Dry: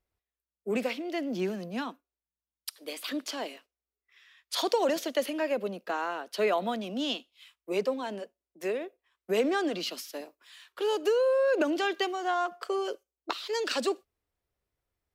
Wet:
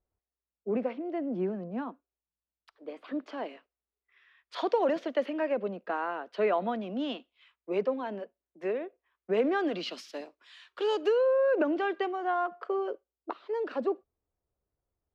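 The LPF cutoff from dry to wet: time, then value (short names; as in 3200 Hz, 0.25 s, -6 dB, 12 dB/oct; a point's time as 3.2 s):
3.1 s 1100 Hz
3.52 s 2000 Hz
9.46 s 2000 Hz
10.02 s 4500 Hz
10.94 s 4500 Hz
11.34 s 1700 Hz
12.48 s 1700 Hz
13.3 s 1000 Hz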